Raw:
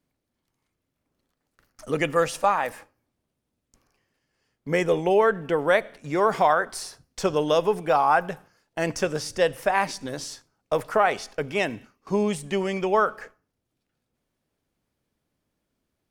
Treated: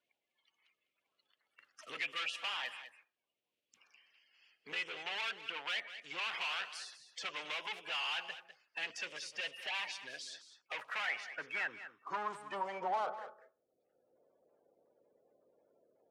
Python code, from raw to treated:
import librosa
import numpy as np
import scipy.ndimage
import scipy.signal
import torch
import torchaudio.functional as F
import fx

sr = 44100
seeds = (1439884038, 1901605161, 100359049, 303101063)

p1 = fx.spec_quant(x, sr, step_db=30)
p2 = fx.dynamic_eq(p1, sr, hz=950.0, q=1.3, threshold_db=-32.0, ratio=4.0, max_db=6)
p3 = np.clip(10.0 ** (26.0 / 20.0) * p2, -1.0, 1.0) / 10.0 ** (26.0 / 20.0)
p4 = fx.filter_sweep_bandpass(p3, sr, from_hz=2800.0, to_hz=520.0, start_s=10.55, end_s=13.74, q=3.2)
p5 = p4 + fx.echo_single(p4, sr, ms=201, db=-14.5, dry=0)
p6 = fx.band_squash(p5, sr, depth_pct=40)
y = F.gain(torch.from_numpy(p6), 1.5).numpy()